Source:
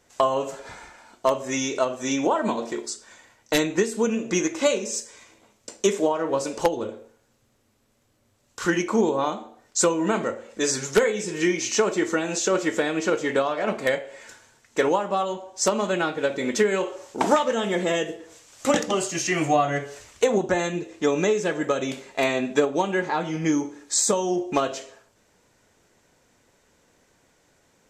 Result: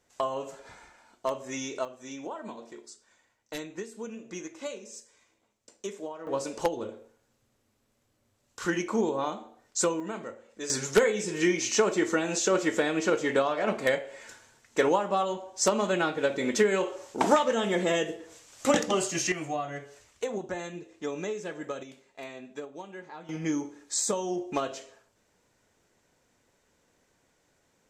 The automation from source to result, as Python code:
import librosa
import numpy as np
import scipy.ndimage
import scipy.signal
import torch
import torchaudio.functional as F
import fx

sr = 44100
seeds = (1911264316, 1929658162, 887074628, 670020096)

y = fx.gain(x, sr, db=fx.steps((0.0, -9.0), (1.85, -16.0), (6.27, -6.0), (10.0, -13.0), (10.7, -2.5), (19.32, -12.0), (21.83, -19.0), (23.29, -7.0)))